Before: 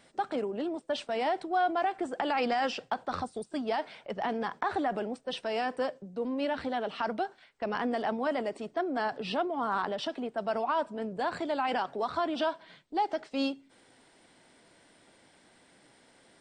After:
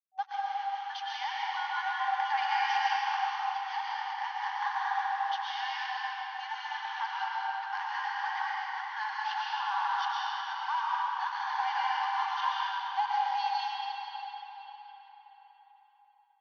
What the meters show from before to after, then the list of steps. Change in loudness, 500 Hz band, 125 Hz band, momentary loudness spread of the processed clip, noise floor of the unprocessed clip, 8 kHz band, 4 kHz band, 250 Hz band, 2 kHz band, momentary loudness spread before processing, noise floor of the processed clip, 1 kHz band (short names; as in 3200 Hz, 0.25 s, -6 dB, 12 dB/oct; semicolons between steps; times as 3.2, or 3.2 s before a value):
0.0 dB, under -30 dB, under -40 dB, 7 LU, -62 dBFS, n/a, +3.0 dB, under -40 dB, +4.0 dB, 6 LU, -62 dBFS, +3.0 dB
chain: notch comb 1300 Hz; backlash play -41 dBFS; FFT band-pass 760–6500 Hz; digital reverb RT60 4.7 s, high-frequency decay 0.7×, pre-delay 80 ms, DRR -7 dB; gain -2 dB